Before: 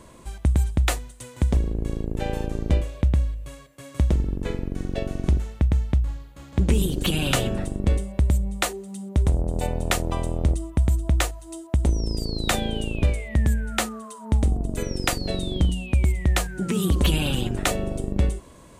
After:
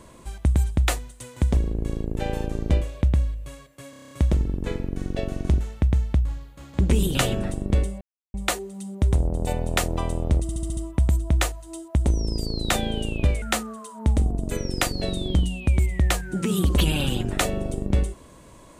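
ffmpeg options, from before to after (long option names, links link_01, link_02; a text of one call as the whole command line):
ffmpeg -i in.wav -filter_complex "[0:a]asplit=17[link_01][link_02][link_03][link_04][link_05][link_06][link_07][link_08][link_09][link_10][link_11][link_12][link_13][link_14][link_15][link_16][link_17];[link_01]atrim=end=3.932[link_18];[link_02]atrim=start=3.898:end=3.932[link_19];[link_03]atrim=start=3.898:end=3.932[link_20];[link_04]atrim=start=3.898:end=3.932[link_21];[link_05]atrim=start=3.898:end=3.932[link_22];[link_06]atrim=start=3.898:end=3.932[link_23];[link_07]atrim=start=3.898:end=3.932[link_24];[link_08]atrim=start=3.898:end=6.942[link_25];[link_09]atrim=start=7.288:end=8.15,asetpts=PTS-STARTPTS,afade=type=out:start_time=0.858:duration=0.004:curve=hsin[link_26];[link_10]atrim=start=8.15:end=8.48,asetpts=PTS-STARTPTS,volume=0[link_27];[link_11]atrim=start=8.48:end=10.632,asetpts=PTS-STARTPTS,afade=type=in:duration=0.004:curve=hsin[link_28];[link_12]atrim=start=10.558:end=10.632[link_29];[link_13]atrim=start=10.558:end=10.632[link_30];[link_14]atrim=start=10.558:end=10.632[link_31];[link_15]atrim=start=10.558:end=10.632[link_32];[link_16]atrim=start=10.558:end=13.212[link_33];[link_17]atrim=start=13.678[link_34];[link_18][link_19]acrossfade=duration=0.004:curve1=hsin:curve2=hsin[link_35];[link_35][link_20]acrossfade=duration=0.004:curve1=hsin:curve2=hsin[link_36];[link_36][link_21]acrossfade=duration=0.004:curve1=hsin:curve2=hsin[link_37];[link_37][link_22]acrossfade=duration=0.004:curve1=hsin:curve2=hsin[link_38];[link_38][link_23]acrossfade=duration=0.004:curve1=hsin:curve2=hsin[link_39];[link_39][link_24]acrossfade=duration=0.004:curve1=hsin:curve2=hsin[link_40];[link_40][link_25]acrossfade=duration=0.004:curve1=hsin:curve2=hsin[link_41];[link_26][link_27][link_28]concat=n=3:v=0:a=1[link_42];[link_41][link_42]acrossfade=duration=0.004:curve1=hsin:curve2=hsin[link_43];[link_43][link_29]acrossfade=duration=0.004:curve1=hsin:curve2=hsin[link_44];[link_44][link_30]acrossfade=duration=0.004:curve1=hsin:curve2=hsin[link_45];[link_45][link_31]acrossfade=duration=0.004:curve1=hsin:curve2=hsin[link_46];[link_46][link_32]acrossfade=duration=0.004:curve1=hsin:curve2=hsin[link_47];[link_47][link_33]acrossfade=duration=0.004:curve1=hsin:curve2=hsin[link_48];[link_48][link_34]acrossfade=duration=0.004:curve1=hsin:curve2=hsin" out.wav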